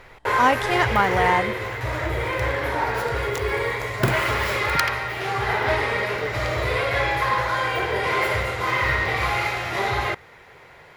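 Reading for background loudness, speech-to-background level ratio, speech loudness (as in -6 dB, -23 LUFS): -23.0 LUFS, 1.5 dB, -21.5 LUFS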